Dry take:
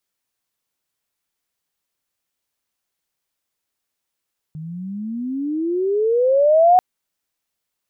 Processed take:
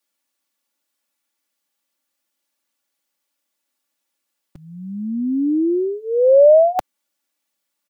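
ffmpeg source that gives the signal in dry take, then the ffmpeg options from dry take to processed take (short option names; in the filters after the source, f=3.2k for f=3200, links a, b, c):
-f lavfi -i "aevalsrc='pow(10,(-8+21*(t/2.24-1))/20)*sin(2*PI*152*2.24/(27.5*log(2)/12)*(exp(27.5*log(2)/12*t/2.24)-1))':d=2.24:s=44100"
-filter_complex "[0:a]aecho=1:1:3.5:0.93,acrossover=split=110|340[a][b][c];[a]acrusher=bits=6:mix=0:aa=0.000001[d];[d][b][c]amix=inputs=3:normalize=0"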